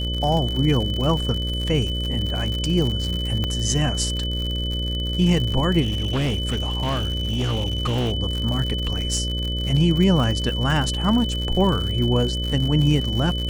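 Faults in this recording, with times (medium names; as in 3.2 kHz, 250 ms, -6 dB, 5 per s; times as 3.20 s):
buzz 60 Hz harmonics 10 -26 dBFS
crackle 99 per s -26 dBFS
whine 3 kHz -28 dBFS
3.44 s: pop -12 dBFS
5.81–8.13 s: clipped -19 dBFS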